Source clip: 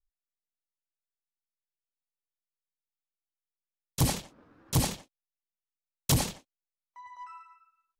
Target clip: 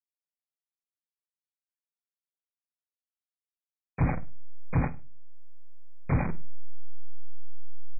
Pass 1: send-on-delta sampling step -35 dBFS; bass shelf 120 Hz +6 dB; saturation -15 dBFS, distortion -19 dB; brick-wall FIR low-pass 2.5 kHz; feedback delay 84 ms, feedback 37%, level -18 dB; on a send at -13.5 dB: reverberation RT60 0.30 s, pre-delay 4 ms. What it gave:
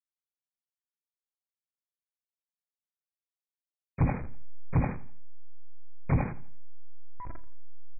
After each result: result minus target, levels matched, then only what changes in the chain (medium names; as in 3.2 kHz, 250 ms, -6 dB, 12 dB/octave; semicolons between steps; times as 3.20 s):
echo 34 ms late; send-on-delta sampling: distortion -8 dB
change: feedback delay 50 ms, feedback 37%, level -18 dB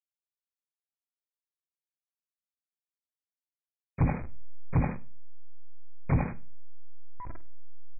send-on-delta sampling: distortion -8 dB
change: send-on-delta sampling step -26 dBFS